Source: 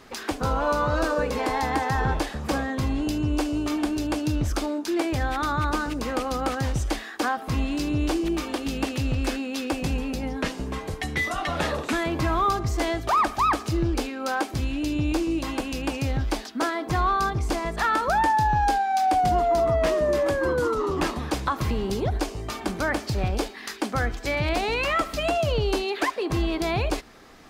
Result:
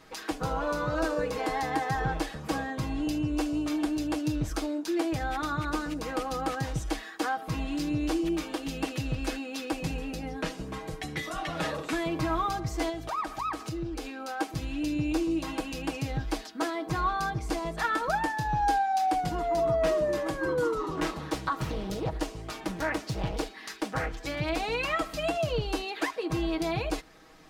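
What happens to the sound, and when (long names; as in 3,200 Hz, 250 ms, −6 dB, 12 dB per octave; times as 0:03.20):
0:12.89–0:14.40: downward compressor 2.5 to 1, threshold −28 dBFS
0:20.95–0:24.26: highs frequency-modulated by the lows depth 0.86 ms
whole clip: comb filter 6.3 ms; level −6.5 dB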